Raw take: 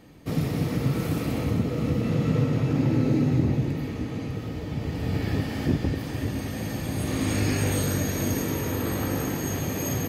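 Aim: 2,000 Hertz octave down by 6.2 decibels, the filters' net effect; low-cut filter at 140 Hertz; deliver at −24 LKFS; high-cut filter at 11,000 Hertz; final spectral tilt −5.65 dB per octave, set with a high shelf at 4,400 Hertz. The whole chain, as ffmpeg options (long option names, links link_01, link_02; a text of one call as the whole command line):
ffmpeg -i in.wav -af "highpass=140,lowpass=11000,equalizer=frequency=2000:width_type=o:gain=-8.5,highshelf=frequency=4400:gain=4,volume=4.5dB" out.wav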